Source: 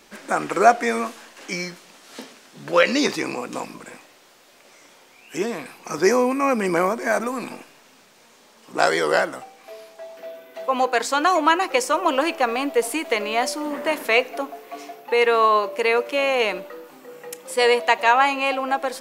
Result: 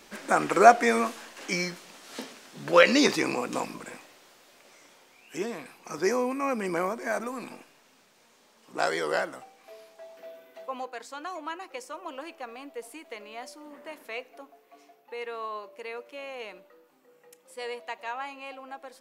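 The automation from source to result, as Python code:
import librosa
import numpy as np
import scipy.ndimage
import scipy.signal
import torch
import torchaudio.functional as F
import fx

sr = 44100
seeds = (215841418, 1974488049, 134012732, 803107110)

y = fx.gain(x, sr, db=fx.line((3.6, -1.0), (5.74, -8.5), (10.48, -8.5), (10.95, -19.0)))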